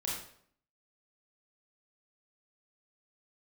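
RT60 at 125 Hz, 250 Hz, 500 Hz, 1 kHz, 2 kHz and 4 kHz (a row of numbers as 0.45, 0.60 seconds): 0.65, 0.70, 0.65, 0.60, 0.55, 0.50 seconds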